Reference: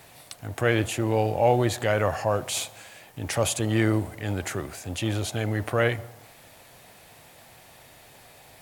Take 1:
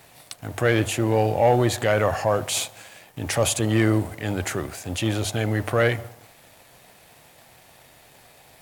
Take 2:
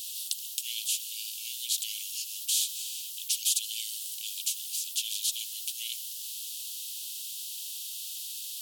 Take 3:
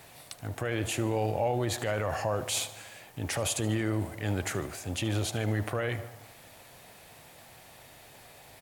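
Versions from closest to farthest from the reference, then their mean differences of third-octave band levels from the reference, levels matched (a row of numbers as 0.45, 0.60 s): 1, 3, 2; 2.0, 3.5, 26.0 dB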